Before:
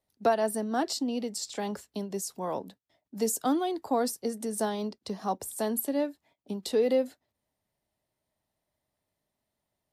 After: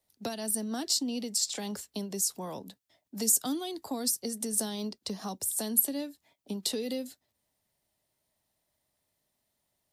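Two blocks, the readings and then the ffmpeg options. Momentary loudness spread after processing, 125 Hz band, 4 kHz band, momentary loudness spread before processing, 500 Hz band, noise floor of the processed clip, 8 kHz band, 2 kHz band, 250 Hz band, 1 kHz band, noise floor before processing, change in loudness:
13 LU, -1.0 dB, +5.0 dB, 10 LU, -9.5 dB, -81 dBFS, +7.5 dB, -6.5 dB, -3.0 dB, -10.5 dB, -85 dBFS, 0.0 dB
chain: -filter_complex "[0:a]highshelf=f=2.8k:g=8.5,acrossover=split=260|3000[a][b][c];[b]acompressor=threshold=-39dB:ratio=6[d];[a][d][c]amix=inputs=3:normalize=0"

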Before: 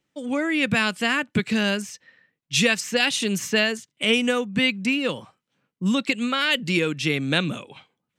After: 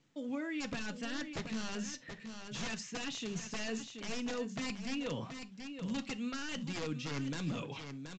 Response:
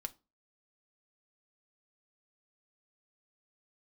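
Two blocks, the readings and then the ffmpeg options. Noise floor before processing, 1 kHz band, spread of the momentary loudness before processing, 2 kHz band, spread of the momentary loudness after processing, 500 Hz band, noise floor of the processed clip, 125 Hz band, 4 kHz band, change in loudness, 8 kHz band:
-81 dBFS, -15.5 dB, 8 LU, -20.0 dB, 6 LU, -17.0 dB, -53 dBFS, -12.5 dB, -19.0 dB, -17.5 dB, -13.5 dB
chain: -filter_complex "[0:a]aeval=exprs='(mod(5.31*val(0)+1,2)-1)/5.31':c=same,areverse,acompressor=threshold=-36dB:ratio=6,areverse,equalizer=f=110:w=0.3:g=6,aecho=1:1:728:0.282,asplit=2[a][b];[b]alimiter=level_in=13dB:limit=-24dB:level=0:latency=1,volume=-13dB,volume=0dB[c];[a][c]amix=inputs=2:normalize=0[d];[1:a]atrim=start_sample=2205,atrim=end_sample=3087,asetrate=34839,aresample=44100[e];[d][e]afir=irnorm=-1:irlink=0,volume=-5.5dB" -ar 16000 -c:a pcm_mulaw

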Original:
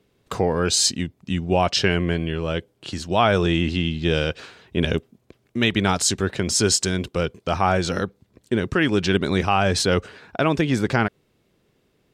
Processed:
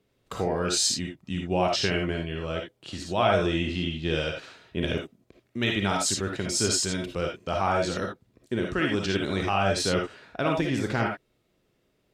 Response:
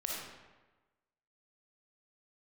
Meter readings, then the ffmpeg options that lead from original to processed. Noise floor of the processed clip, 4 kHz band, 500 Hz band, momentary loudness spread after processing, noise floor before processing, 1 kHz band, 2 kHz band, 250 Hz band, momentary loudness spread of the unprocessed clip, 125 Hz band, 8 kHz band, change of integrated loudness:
-71 dBFS, -5.0 dB, -4.5 dB, 11 LU, -66 dBFS, -4.5 dB, -5.0 dB, -6.0 dB, 10 LU, -7.0 dB, -5.0 dB, -5.5 dB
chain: -filter_complex "[1:a]atrim=start_sample=2205,atrim=end_sample=3969[a];[0:a][a]afir=irnorm=-1:irlink=0,volume=-5.5dB"

